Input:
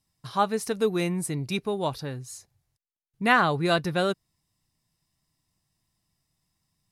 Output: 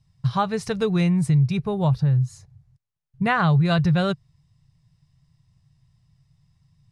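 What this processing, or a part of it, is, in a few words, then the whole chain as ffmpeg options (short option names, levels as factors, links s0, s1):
jukebox: -filter_complex "[0:a]asettb=1/sr,asplit=3[s0][s1][s2];[s0]atrim=end=1.524[s3];[s1]atrim=start=1.52:end=3.4,asetpts=PTS-STARTPTS,afade=t=in:d=0.004:c=qsin,afade=t=out:st=1.876:d=0.004:c=qsin,equalizer=f=3800:w=0.55:g=-6[s4];[s2]atrim=start=3.396[s5];[s3][s4]acrossfade=d=0.004:c1=hsin:c2=qsin[s6];[s6][s5]acrossfade=d=0.004:c1=qsin:c2=hsin,lowpass=5700,lowshelf=f=190:t=q:w=3:g=11,acompressor=threshold=0.0794:ratio=3,volume=1.68"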